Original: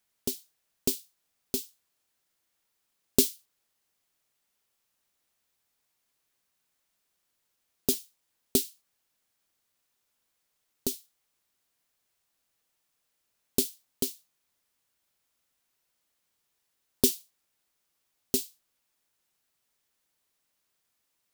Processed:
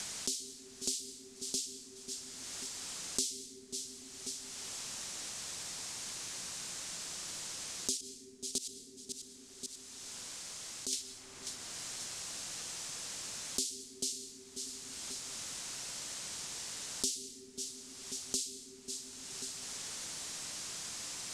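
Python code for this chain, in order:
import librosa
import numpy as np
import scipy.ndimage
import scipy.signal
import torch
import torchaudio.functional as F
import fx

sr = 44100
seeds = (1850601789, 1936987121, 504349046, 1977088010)

y = scipy.signal.sosfilt(scipy.signal.butter(4, 7900.0, 'lowpass', fs=sr, output='sos'), x)
y = fx.bass_treble(y, sr, bass_db=6, treble_db=12)
y = fx.level_steps(y, sr, step_db=22, at=(7.97, 10.93))
y = fx.auto_swell(y, sr, attack_ms=142.0)
y = fx.echo_feedback(y, sr, ms=540, feedback_pct=26, wet_db=-20.0)
y = fx.rev_plate(y, sr, seeds[0], rt60_s=1.6, hf_ratio=0.35, predelay_ms=105, drr_db=10.5)
y = fx.band_squash(y, sr, depth_pct=100)
y = y * 10.0 ** (13.0 / 20.0)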